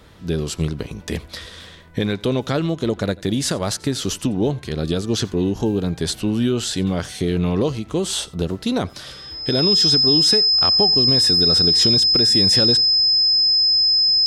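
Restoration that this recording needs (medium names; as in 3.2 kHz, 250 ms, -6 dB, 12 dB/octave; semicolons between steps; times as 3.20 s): band-stop 5.1 kHz, Q 30; inverse comb 88 ms -23.5 dB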